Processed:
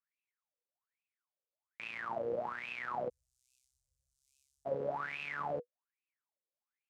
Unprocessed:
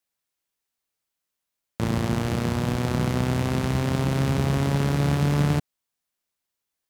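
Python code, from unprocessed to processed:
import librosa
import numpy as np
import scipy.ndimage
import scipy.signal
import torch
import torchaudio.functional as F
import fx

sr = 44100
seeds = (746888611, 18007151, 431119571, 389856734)

y = fx.wah_lfo(x, sr, hz=1.2, low_hz=480.0, high_hz=2600.0, q=17.0)
y = fx.cheby2_bandstop(y, sr, low_hz=190.0, high_hz=1900.0, order=4, stop_db=70, at=(3.08, 4.65), fade=0.02)
y = F.gain(torch.from_numpy(y), 7.5).numpy()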